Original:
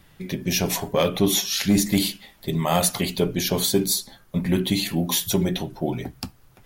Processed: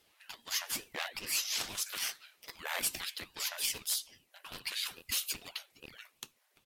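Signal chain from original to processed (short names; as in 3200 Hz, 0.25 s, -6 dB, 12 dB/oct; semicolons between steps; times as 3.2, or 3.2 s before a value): one-sided fold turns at -16.5 dBFS; brick-wall FIR high-pass 960 Hz; downsampling 32000 Hz; ring modulator with a swept carrier 950 Hz, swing 60%, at 2.4 Hz; gain -6 dB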